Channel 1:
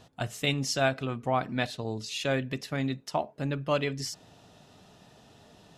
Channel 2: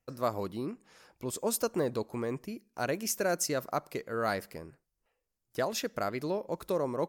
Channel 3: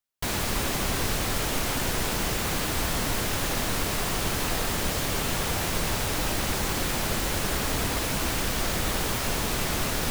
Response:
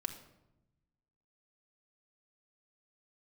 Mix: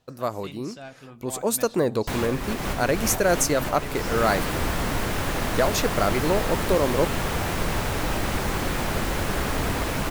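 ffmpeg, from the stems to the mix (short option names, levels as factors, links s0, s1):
-filter_complex "[0:a]asoftclip=type=tanh:threshold=0.106,volume=0.158,asplit=3[s0][s1][s2];[s1]volume=0.376[s3];[1:a]bandreject=f=5200:w=12,volume=1.41[s4];[2:a]acrossover=split=2500[s5][s6];[s6]acompressor=threshold=0.0141:ratio=4:attack=1:release=60[s7];[s5][s7]amix=inputs=2:normalize=0,adelay=1850,volume=0.708[s8];[s2]apad=whole_len=527425[s9];[s8][s9]sidechaincompress=threshold=0.00355:ratio=8:attack=16:release=317[s10];[3:a]atrim=start_sample=2205[s11];[s3][s11]afir=irnorm=-1:irlink=0[s12];[s0][s4][s10][s12]amix=inputs=4:normalize=0,dynaudnorm=f=220:g=13:m=2"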